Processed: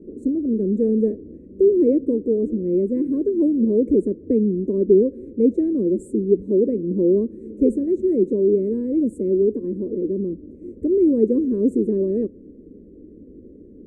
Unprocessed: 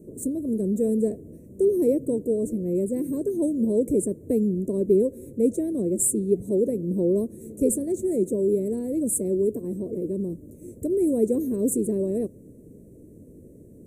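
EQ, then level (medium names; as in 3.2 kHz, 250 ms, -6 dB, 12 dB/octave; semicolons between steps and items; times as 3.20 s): low-pass 1.4 kHz 12 dB/octave; static phaser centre 310 Hz, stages 4; +6.5 dB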